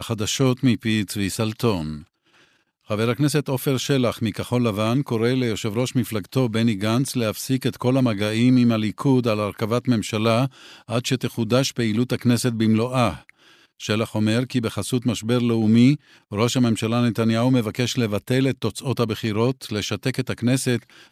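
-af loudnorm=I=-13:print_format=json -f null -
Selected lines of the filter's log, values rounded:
"input_i" : "-22.0",
"input_tp" : "-4.3",
"input_lra" : "2.9",
"input_thresh" : "-32.3",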